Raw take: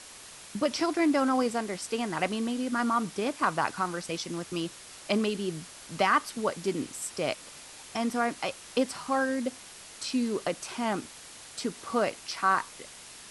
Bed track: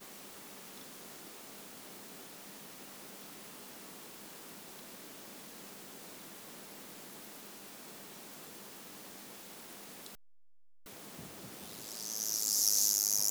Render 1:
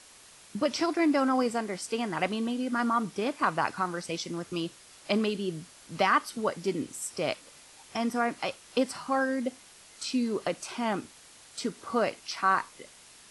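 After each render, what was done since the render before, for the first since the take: noise print and reduce 6 dB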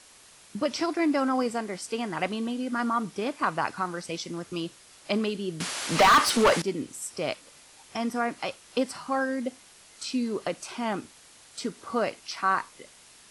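5.60–6.62 s: overdrive pedal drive 30 dB, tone 4.6 kHz, clips at -11 dBFS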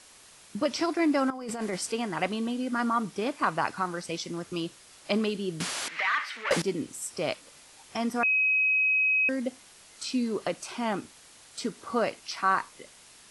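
1.30–1.92 s: compressor with a negative ratio -34 dBFS; 5.88–6.51 s: band-pass filter 2 kHz, Q 3.4; 8.23–9.29 s: bleep 2.54 kHz -21 dBFS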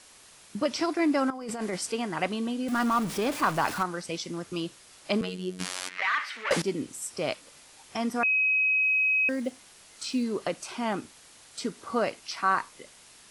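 2.68–3.83 s: jump at every zero crossing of -32 dBFS; 5.21–6.02 s: robot voice 91.7 Hz; 8.82–10.24 s: block-companded coder 7-bit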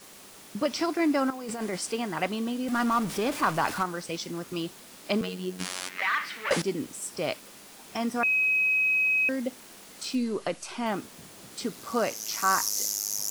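add bed track -0.5 dB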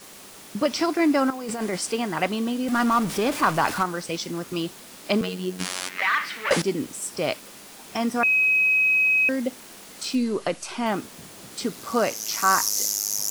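trim +4.5 dB

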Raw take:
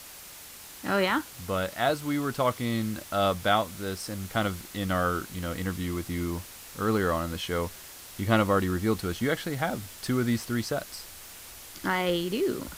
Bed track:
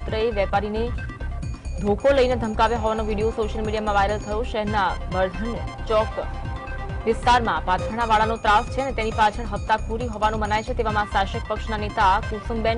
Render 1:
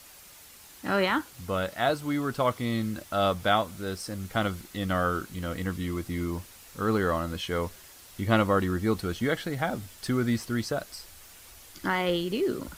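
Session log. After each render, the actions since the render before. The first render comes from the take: noise reduction 6 dB, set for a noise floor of -46 dBFS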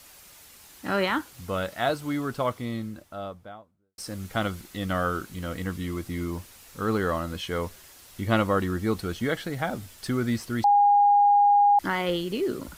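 2.04–3.98 s: studio fade out; 10.64–11.79 s: bleep 816 Hz -15 dBFS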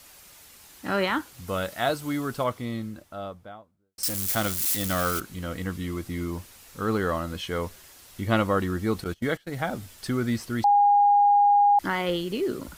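1.47–2.44 s: treble shelf 5.8 kHz +6 dB; 4.03–5.20 s: zero-crossing glitches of -20 dBFS; 9.04–9.54 s: gate -32 dBFS, range -22 dB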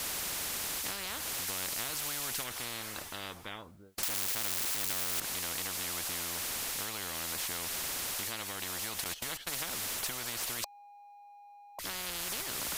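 compression, threshold -29 dBFS, peak gain reduction 11.5 dB; spectrum-flattening compressor 10:1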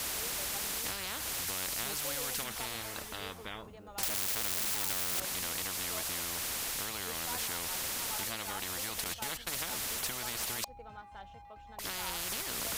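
add bed track -28 dB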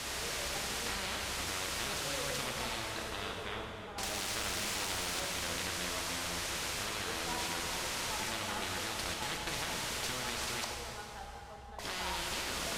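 distance through air 59 m; plate-style reverb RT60 2.9 s, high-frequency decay 0.85×, pre-delay 0 ms, DRR -0.5 dB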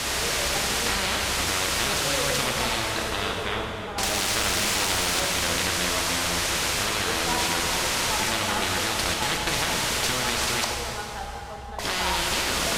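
trim +12 dB

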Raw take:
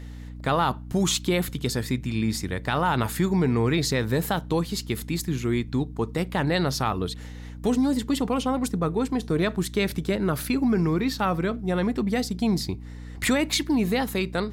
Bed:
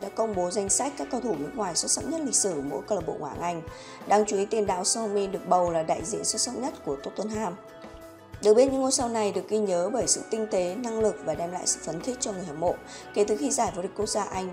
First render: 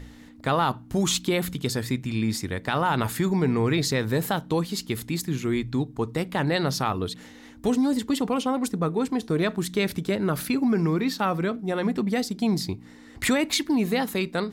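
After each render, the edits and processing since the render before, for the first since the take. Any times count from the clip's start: de-hum 60 Hz, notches 3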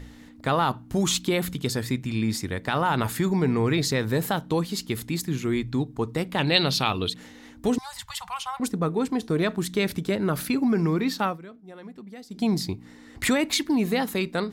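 6.38–7.10 s: high-order bell 3.2 kHz +11.5 dB 1.1 oct; 7.78–8.60 s: elliptic band-stop 120–870 Hz, stop band 70 dB; 11.25–12.41 s: dip -17 dB, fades 0.13 s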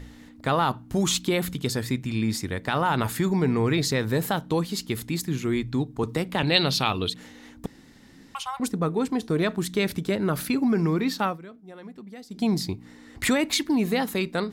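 6.03–6.43 s: three bands compressed up and down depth 40%; 7.66–8.35 s: room tone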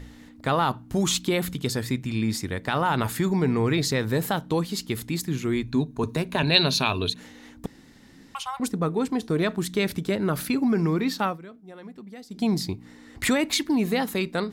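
5.63–7.20 s: rippled EQ curve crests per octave 1.5, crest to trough 8 dB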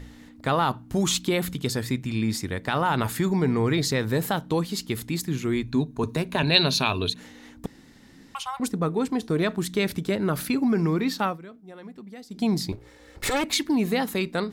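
3.38–3.86 s: band-stop 2.6 kHz; 12.72–13.44 s: comb filter that takes the minimum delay 2.3 ms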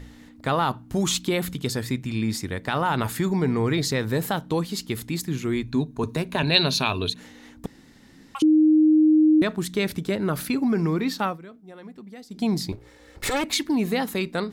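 8.42–9.42 s: bleep 310 Hz -13 dBFS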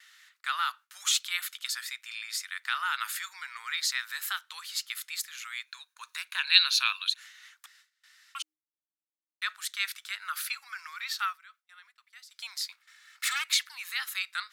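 elliptic high-pass 1.3 kHz, stop band 80 dB; gate with hold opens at -49 dBFS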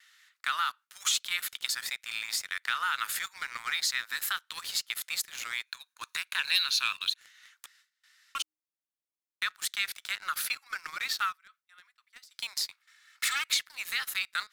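waveshaping leveller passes 2; compression 2:1, threshold -32 dBFS, peak gain reduction 12 dB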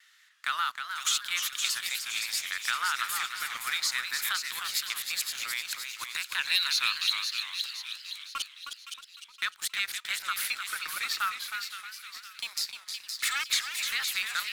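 feedback echo behind a high-pass 516 ms, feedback 48%, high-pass 2.3 kHz, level -5.5 dB; modulated delay 308 ms, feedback 37%, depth 173 cents, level -7 dB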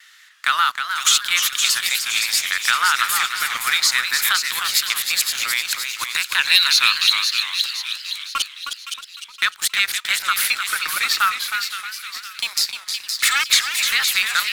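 trim +12 dB; peak limiter -2 dBFS, peak gain reduction 2 dB

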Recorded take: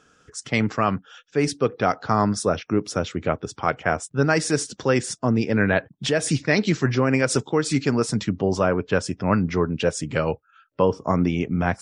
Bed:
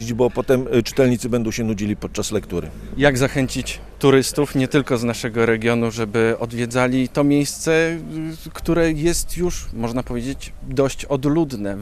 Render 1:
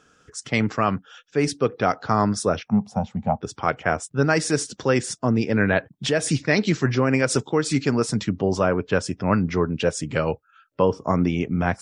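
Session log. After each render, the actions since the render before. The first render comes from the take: 2.68–3.41 s: FFT filter 140 Hz 0 dB, 220 Hz +9 dB, 310 Hz -24 dB, 560 Hz -6 dB, 810 Hz +13 dB, 1.3 kHz -15 dB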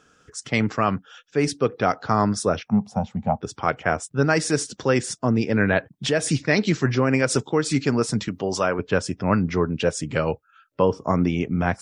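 8.28–8.79 s: tilt EQ +2.5 dB/octave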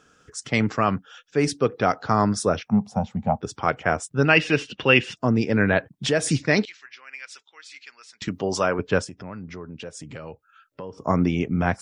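4.25–5.17 s: resonant low-pass 2.8 kHz, resonance Q 11; 6.65–8.22 s: ladder band-pass 3 kHz, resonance 25%; 9.04–10.98 s: compression 3:1, threshold -38 dBFS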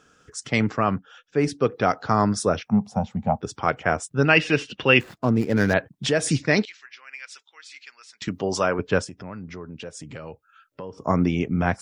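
0.71–1.61 s: treble shelf 3 kHz -8 dB; 5.00–5.74 s: median filter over 15 samples; 6.62–8.27 s: bass shelf 390 Hz -8.5 dB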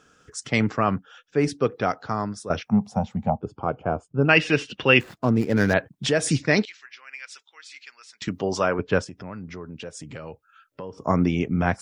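1.51–2.50 s: fade out, to -14.5 dB; 3.30–4.29 s: boxcar filter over 23 samples; 8.49–9.15 s: distance through air 56 m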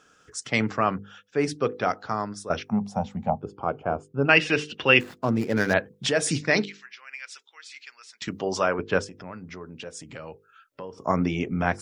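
bass shelf 270 Hz -5.5 dB; hum notches 50/100/150/200/250/300/350/400/450/500 Hz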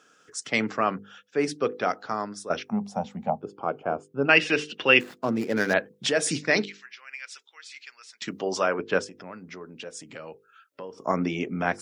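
high-pass 200 Hz 12 dB/octave; peaking EQ 940 Hz -2 dB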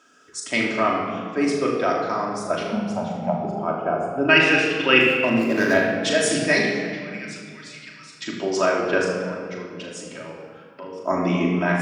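flutter echo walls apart 6.7 m, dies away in 0.38 s; simulated room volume 3700 m³, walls mixed, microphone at 2.8 m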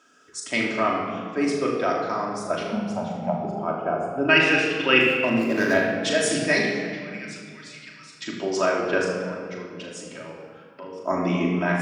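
trim -2 dB

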